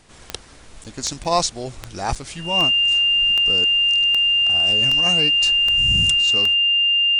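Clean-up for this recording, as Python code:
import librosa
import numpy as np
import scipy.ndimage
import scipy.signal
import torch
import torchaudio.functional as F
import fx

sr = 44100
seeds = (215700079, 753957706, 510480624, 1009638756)

y = fx.fix_declick_ar(x, sr, threshold=10.0)
y = fx.notch(y, sr, hz=2800.0, q=30.0)
y = fx.fix_interpolate(y, sr, at_s=(0.84, 1.24, 2.15), length_ms=7.1)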